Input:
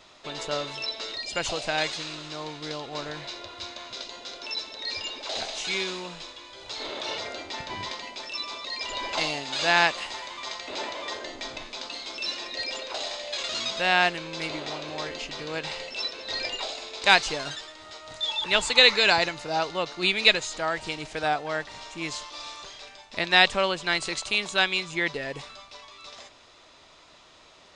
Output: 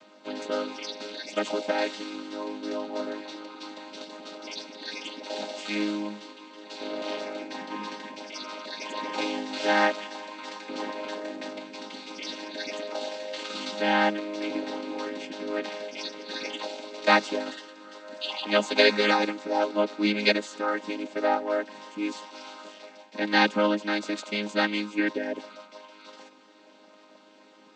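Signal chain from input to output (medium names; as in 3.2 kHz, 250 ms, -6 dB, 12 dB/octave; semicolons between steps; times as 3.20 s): vocoder on a held chord major triad, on G#3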